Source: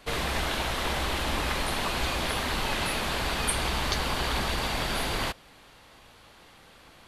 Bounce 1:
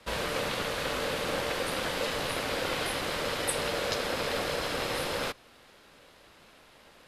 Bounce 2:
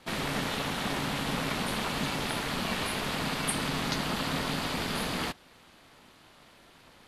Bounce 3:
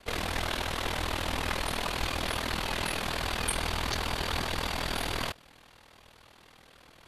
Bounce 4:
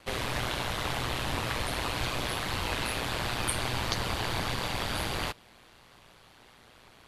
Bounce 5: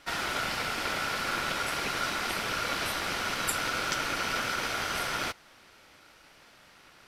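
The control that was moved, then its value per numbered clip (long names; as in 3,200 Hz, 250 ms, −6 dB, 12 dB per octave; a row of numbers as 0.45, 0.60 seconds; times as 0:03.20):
ring modulation, frequency: 520, 210, 20, 60, 1,400 Hertz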